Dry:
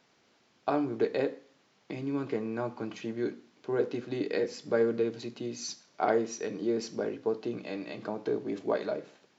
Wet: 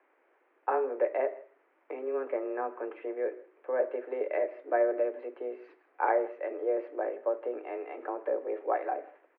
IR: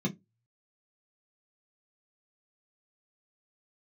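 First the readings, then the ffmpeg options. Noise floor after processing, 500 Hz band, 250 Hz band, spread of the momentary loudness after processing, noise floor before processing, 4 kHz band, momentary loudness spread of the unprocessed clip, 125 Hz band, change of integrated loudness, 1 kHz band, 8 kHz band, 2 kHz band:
-70 dBFS, +1.0 dB, -8.5 dB, 11 LU, -68 dBFS, under -20 dB, 10 LU, under -40 dB, 0.0 dB, +4.0 dB, n/a, 0.0 dB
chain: -af "aecho=1:1:159:0.0794,highpass=f=160:t=q:w=0.5412,highpass=f=160:t=q:w=1.307,lowpass=f=2.1k:t=q:w=0.5176,lowpass=f=2.1k:t=q:w=0.7071,lowpass=f=2.1k:t=q:w=1.932,afreqshift=130"

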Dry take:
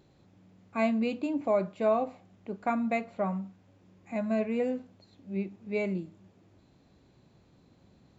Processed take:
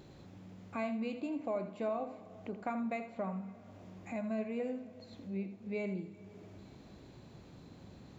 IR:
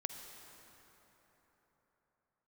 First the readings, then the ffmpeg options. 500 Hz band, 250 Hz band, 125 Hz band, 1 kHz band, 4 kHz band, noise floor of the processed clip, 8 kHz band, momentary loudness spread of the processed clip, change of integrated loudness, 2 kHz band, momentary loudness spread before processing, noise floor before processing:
-8.5 dB, -7.0 dB, -5.5 dB, -8.5 dB, -6.5 dB, -56 dBFS, n/a, 18 LU, -8.5 dB, -8.0 dB, 11 LU, -63 dBFS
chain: -filter_complex "[0:a]acompressor=threshold=-55dB:ratio=2,asplit=2[a][b];[1:a]atrim=start_sample=2205,adelay=82[c];[b][c]afir=irnorm=-1:irlink=0,volume=-9.5dB[d];[a][d]amix=inputs=2:normalize=0,volume=7dB"

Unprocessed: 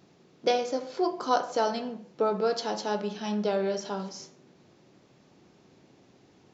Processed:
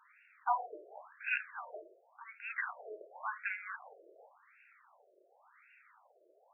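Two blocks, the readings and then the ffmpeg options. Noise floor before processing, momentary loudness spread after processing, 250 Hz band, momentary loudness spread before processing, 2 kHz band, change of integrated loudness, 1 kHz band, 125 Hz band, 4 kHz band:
-61 dBFS, 19 LU, -34.0 dB, 10 LU, +2.5 dB, -10.5 dB, -9.0 dB, n/a, under -20 dB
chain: -filter_complex "[0:a]afftfilt=real='real(if(lt(b,272),68*(eq(floor(b/68),0)*1+eq(floor(b/68),1)*2+eq(floor(b/68),2)*3+eq(floor(b/68),3)*0)+mod(b,68),b),0)':imag='imag(if(lt(b,272),68*(eq(floor(b/68),0)*1+eq(floor(b/68),1)*2+eq(floor(b/68),2)*3+eq(floor(b/68),3)*0)+mod(b,68),b),0)':win_size=2048:overlap=0.75,equalizer=f=5.3k:t=o:w=0.64:g=7,acrossover=split=210|510|2900[a][b][c][d];[d]acompressor=threshold=-37dB:ratio=5[e];[a][b][c][e]amix=inputs=4:normalize=0,afftfilt=real='re*between(b*sr/1024,460*pow(2000/460,0.5+0.5*sin(2*PI*0.91*pts/sr))/1.41,460*pow(2000/460,0.5+0.5*sin(2*PI*0.91*pts/sr))*1.41)':imag='im*between(b*sr/1024,460*pow(2000/460,0.5+0.5*sin(2*PI*0.91*pts/sr))/1.41,460*pow(2000/460,0.5+0.5*sin(2*PI*0.91*pts/sr))*1.41)':win_size=1024:overlap=0.75,volume=11.5dB"

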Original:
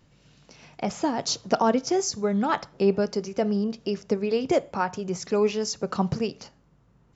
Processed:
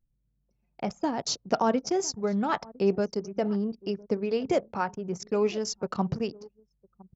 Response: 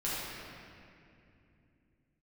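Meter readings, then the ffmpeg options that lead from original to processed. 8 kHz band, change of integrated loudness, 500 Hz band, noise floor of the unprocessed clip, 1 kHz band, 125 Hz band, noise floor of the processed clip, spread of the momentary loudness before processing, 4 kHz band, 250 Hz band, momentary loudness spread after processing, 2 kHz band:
n/a, -3.0 dB, -3.0 dB, -61 dBFS, -3.0 dB, -3.0 dB, -76 dBFS, 7 LU, -3.5 dB, -3.0 dB, 7 LU, -3.5 dB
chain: -af "aecho=1:1:1006:0.0944,anlmdn=3.98,volume=-3dB"

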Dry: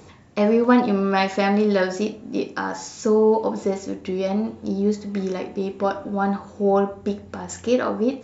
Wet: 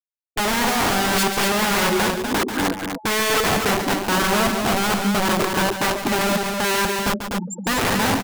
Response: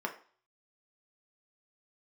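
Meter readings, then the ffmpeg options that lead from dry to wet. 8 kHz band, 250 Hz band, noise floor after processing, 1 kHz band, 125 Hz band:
n/a, -1.5 dB, -42 dBFS, +5.0 dB, +2.5 dB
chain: -filter_complex "[0:a]afftfilt=real='re*gte(hypot(re,im),0.141)':imag='im*gte(hypot(re,im),0.141)':win_size=1024:overlap=0.75,firequalizer=gain_entry='entry(330,0);entry(730,-21);entry(4200,-2)':delay=0.05:min_phase=1,areverse,acompressor=mode=upward:threshold=-43dB:ratio=2.5,areverse,asplit=2[a][b];[b]highpass=f=720:p=1,volume=27dB,asoftclip=type=tanh:threshold=-10dB[c];[a][c]amix=inputs=2:normalize=0,lowpass=f=3.2k:p=1,volume=-6dB,aeval=exprs='(mod(7.08*val(0)+1,2)-1)/7.08':c=same,aecho=1:1:140|149|247:0.355|0.141|0.562"

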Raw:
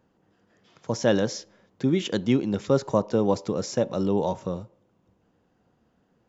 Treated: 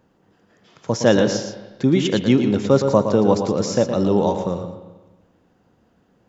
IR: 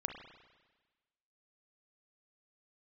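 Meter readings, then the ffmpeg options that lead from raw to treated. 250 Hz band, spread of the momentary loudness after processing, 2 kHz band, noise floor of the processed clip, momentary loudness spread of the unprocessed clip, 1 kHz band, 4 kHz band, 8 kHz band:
+7.0 dB, 11 LU, +7.0 dB, -61 dBFS, 10 LU, +7.0 dB, +7.0 dB, n/a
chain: -filter_complex "[0:a]asplit=2[a][b];[1:a]atrim=start_sample=2205,asetrate=48510,aresample=44100,adelay=115[c];[b][c]afir=irnorm=-1:irlink=0,volume=-6dB[d];[a][d]amix=inputs=2:normalize=0,volume=6dB"

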